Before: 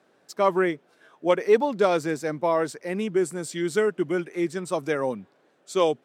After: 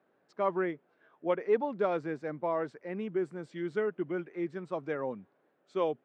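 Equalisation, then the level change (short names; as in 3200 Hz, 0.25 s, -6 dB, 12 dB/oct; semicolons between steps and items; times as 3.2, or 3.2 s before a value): LPF 2200 Hz 12 dB/oct; -8.5 dB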